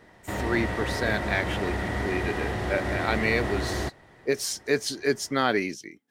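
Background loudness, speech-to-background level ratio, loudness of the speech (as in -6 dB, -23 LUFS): -30.0 LUFS, 1.5 dB, -28.5 LUFS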